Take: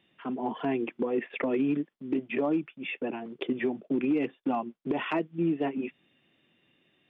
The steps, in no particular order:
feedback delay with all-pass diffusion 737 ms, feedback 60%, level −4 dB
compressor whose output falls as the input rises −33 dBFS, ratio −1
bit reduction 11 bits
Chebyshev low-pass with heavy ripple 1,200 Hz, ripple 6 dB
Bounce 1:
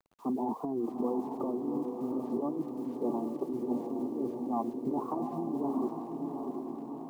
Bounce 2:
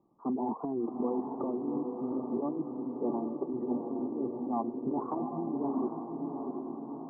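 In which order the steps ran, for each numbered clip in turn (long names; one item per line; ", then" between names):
Chebyshev low-pass with heavy ripple, then bit reduction, then compressor whose output falls as the input rises, then feedback delay with all-pass diffusion
bit reduction, then Chebyshev low-pass with heavy ripple, then compressor whose output falls as the input rises, then feedback delay with all-pass diffusion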